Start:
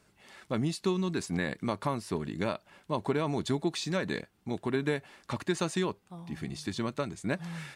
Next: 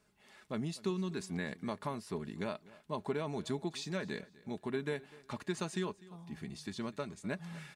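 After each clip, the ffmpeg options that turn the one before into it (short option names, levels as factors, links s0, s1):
-af "aecho=1:1:4.8:0.33,aecho=1:1:249|498:0.0891|0.025,volume=0.422"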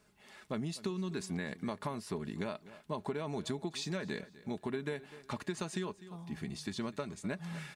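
-af "acompressor=threshold=0.0141:ratio=6,volume=1.58"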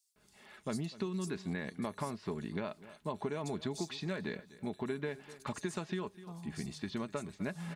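-filter_complex "[0:a]acrossover=split=4700[s0][s1];[s0]adelay=160[s2];[s2][s1]amix=inputs=2:normalize=0"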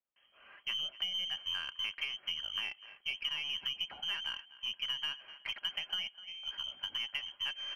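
-af "lowpass=f=2800:t=q:w=0.5098,lowpass=f=2800:t=q:w=0.6013,lowpass=f=2800:t=q:w=0.9,lowpass=f=2800:t=q:w=2.563,afreqshift=-3300,aeval=exprs='0.075*(cos(1*acos(clip(val(0)/0.075,-1,1)))-cos(1*PI/2))+0.0015*(cos(8*acos(clip(val(0)/0.075,-1,1)))-cos(8*PI/2))':c=same"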